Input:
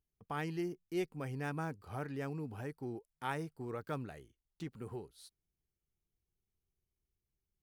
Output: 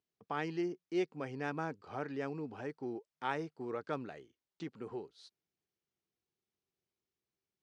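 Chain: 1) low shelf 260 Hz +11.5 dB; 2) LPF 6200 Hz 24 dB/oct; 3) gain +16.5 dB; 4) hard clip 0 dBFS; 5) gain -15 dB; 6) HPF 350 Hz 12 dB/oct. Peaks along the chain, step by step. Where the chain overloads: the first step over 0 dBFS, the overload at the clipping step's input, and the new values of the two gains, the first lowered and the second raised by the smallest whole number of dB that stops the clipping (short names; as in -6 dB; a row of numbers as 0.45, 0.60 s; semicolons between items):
-22.0, -22.0, -5.5, -5.5, -20.5, -20.5 dBFS; no overload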